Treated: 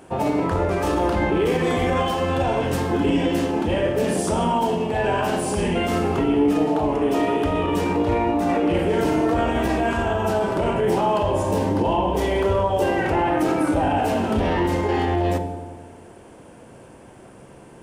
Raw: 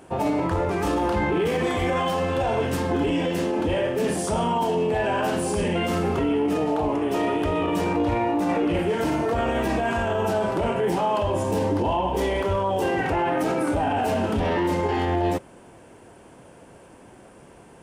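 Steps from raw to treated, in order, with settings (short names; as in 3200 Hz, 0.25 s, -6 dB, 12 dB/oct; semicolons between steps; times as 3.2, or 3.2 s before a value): dark delay 90 ms, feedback 67%, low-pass 550 Hz, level -4 dB; Schroeder reverb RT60 0.88 s, combs from 29 ms, DRR 12 dB; gain +1.5 dB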